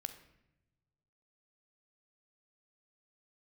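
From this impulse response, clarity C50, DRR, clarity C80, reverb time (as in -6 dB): 11.0 dB, 8.5 dB, 13.5 dB, no single decay rate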